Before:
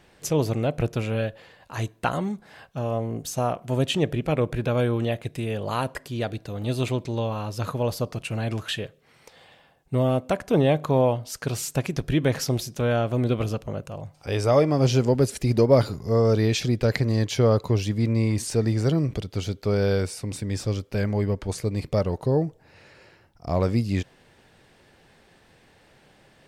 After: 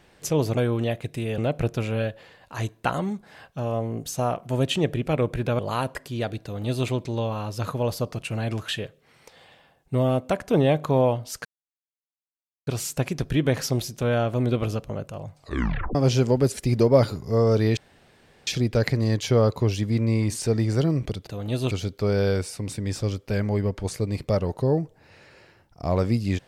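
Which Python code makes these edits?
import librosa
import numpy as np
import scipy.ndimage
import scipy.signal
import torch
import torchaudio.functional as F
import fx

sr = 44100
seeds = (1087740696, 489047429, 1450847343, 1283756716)

y = fx.edit(x, sr, fx.move(start_s=4.78, length_s=0.81, to_s=0.57),
    fx.duplicate(start_s=6.43, length_s=0.44, to_s=19.35),
    fx.insert_silence(at_s=11.45, length_s=1.22),
    fx.tape_stop(start_s=14.15, length_s=0.58),
    fx.insert_room_tone(at_s=16.55, length_s=0.7), tone=tone)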